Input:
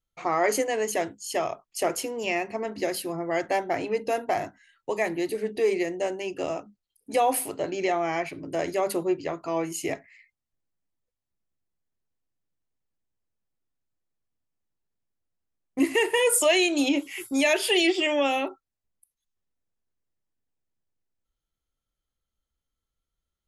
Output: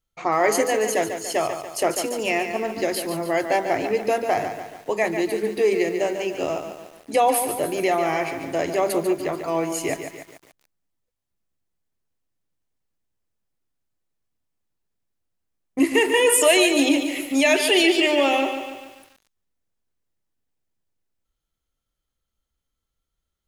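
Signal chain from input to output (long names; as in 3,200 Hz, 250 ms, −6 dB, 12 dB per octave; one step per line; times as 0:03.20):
feedback echo at a low word length 144 ms, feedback 55%, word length 8 bits, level −8 dB
level +4 dB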